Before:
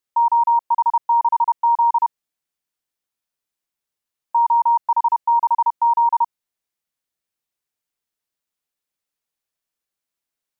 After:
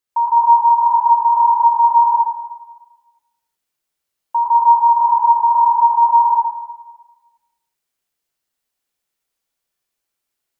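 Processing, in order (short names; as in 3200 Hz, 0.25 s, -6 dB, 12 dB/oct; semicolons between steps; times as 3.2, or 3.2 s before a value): plate-style reverb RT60 1.2 s, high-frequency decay 0.95×, pre-delay 75 ms, DRR -5 dB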